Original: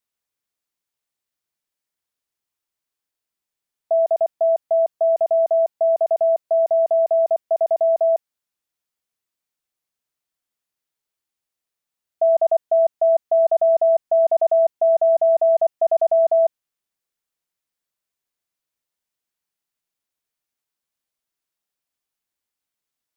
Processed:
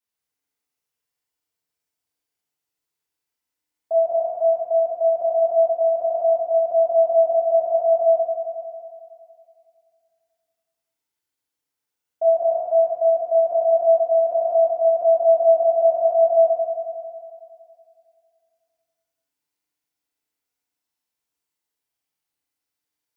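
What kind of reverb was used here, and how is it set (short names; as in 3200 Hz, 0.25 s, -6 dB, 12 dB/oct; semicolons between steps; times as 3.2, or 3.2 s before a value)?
FDN reverb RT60 2.4 s, low-frequency decay 0.8×, high-frequency decay 0.8×, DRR -8 dB; gain -7.5 dB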